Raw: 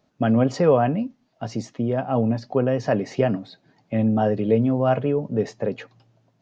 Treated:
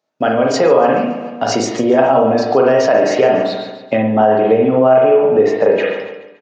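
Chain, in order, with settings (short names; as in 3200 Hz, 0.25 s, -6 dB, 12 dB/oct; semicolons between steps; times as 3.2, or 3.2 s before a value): HPF 180 Hz 6 dB/oct; gate -56 dBFS, range -19 dB; AGC gain up to 11.5 dB; feedback echo 0.142 s, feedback 40%, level -14 dB; reverb RT60 0.55 s, pre-delay 37 ms, DRR -0.5 dB; flange 0.34 Hz, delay 6.1 ms, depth 2.3 ms, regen +76%; high shelf 5000 Hz -10.5 dB; compressor 2:1, threshold -29 dBFS, peak gain reduction 13 dB; tone controls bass -15 dB, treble +10 dB, from 3.96 s treble -3 dB; maximiser +18 dB; gain -1 dB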